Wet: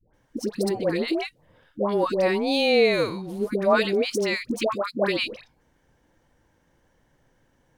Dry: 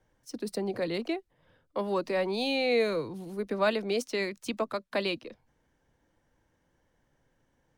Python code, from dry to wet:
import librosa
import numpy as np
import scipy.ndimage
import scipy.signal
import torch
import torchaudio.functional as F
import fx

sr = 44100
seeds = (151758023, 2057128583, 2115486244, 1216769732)

y = fx.dispersion(x, sr, late='highs', ms=138.0, hz=780.0)
y = y * librosa.db_to_amplitude(7.0)